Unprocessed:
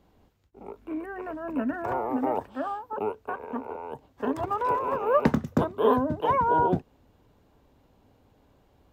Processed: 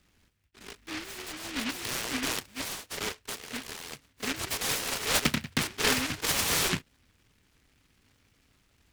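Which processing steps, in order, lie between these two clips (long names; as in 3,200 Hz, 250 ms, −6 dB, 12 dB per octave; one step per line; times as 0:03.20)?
short delay modulated by noise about 2,100 Hz, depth 0.5 ms
level −5 dB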